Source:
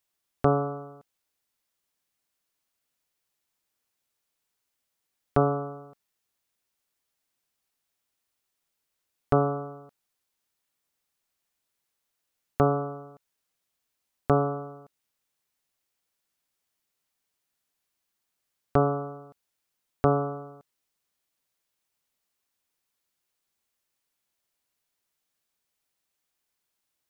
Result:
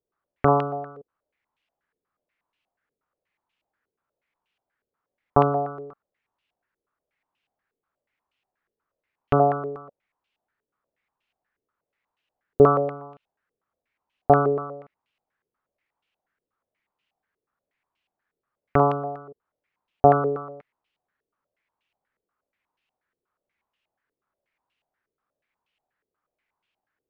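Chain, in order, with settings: stepped low-pass 8.3 Hz 440–2800 Hz; gain +1.5 dB

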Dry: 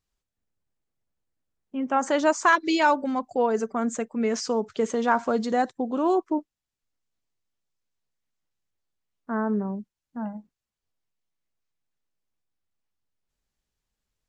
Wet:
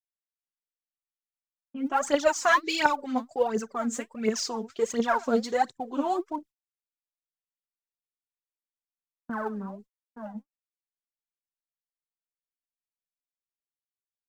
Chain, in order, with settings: gate -39 dBFS, range -40 dB; high shelf 2100 Hz -3.5 dB, from 1.92 s +6.5 dB; phaser 1.4 Hz, delay 4.6 ms, feedback 75%; gain -7.5 dB

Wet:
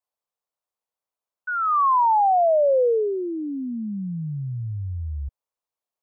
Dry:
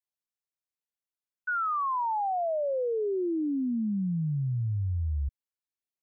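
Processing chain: band shelf 740 Hz +11 dB

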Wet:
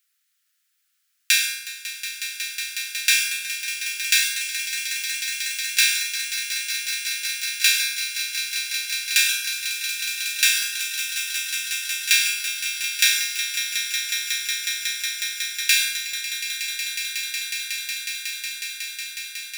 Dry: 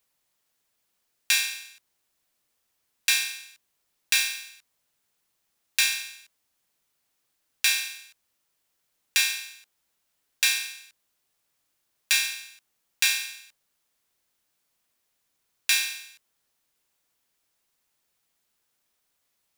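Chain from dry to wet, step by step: steep high-pass 1300 Hz 72 dB/oct; swelling echo 0.183 s, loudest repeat 8, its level -11.5 dB; on a send at -8 dB: reverb RT60 0.35 s, pre-delay 97 ms; on the sum: gain +4 dB

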